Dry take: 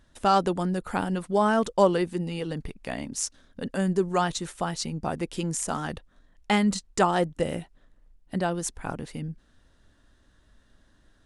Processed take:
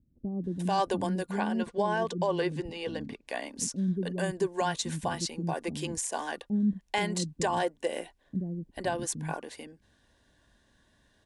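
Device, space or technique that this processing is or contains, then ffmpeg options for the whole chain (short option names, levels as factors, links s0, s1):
PA system with an anti-feedback notch: -filter_complex "[0:a]asettb=1/sr,asplit=3[s0][s1][s2];[s0]atrim=end=0.874[s3];[s1]atrim=start=0.87:end=2.83,asetpts=PTS-STARTPTS,afade=t=in:d=0.004:c=qsin,afade=t=out:st=1.956:d=0.004:c=qsin,lowpass=6200[s4];[s2]atrim=start=2.826[s5];[s3][s4]acrossfade=d=0.004:c1=hsin:c2=qsin[s6];[s6][s5]acrossfade=d=0.004:c1=qsin:c2=hsin,highpass=f=110:p=1,asuperstop=centerf=1300:order=20:qfactor=6,acrossover=split=300[s7][s8];[s8]adelay=440[s9];[s7][s9]amix=inputs=2:normalize=0,alimiter=limit=0.119:level=0:latency=1:release=92"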